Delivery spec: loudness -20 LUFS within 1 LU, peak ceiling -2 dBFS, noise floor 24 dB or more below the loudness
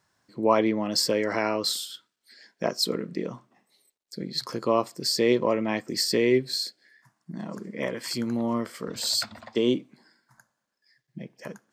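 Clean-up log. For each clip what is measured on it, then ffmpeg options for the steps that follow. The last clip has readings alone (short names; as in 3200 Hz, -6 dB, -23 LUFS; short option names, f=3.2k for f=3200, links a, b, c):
loudness -26.5 LUFS; peak -7.5 dBFS; loudness target -20.0 LUFS
-> -af "volume=6.5dB,alimiter=limit=-2dB:level=0:latency=1"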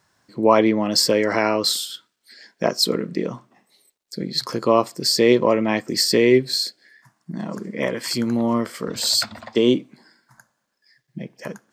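loudness -20.0 LUFS; peak -2.0 dBFS; noise floor -74 dBFS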